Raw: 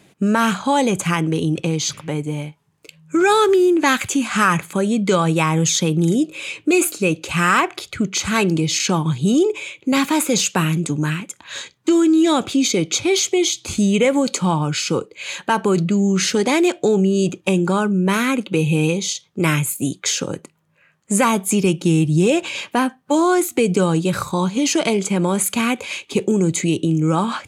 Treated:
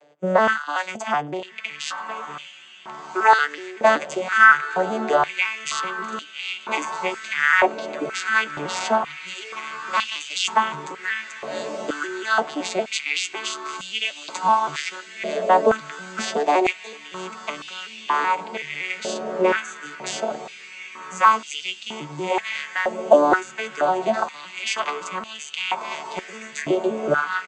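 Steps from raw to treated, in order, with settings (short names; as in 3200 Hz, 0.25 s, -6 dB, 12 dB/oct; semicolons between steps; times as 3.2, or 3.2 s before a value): arpeggiated vocoder major triad, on D3, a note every 0.188 s; doubler 13 ms -12.5 dB; diffused feedback echo 1.443 s, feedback 55%, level -12 dB; stepped high-pass 2.1 Hz 590–2900 Hz; gain +5 dB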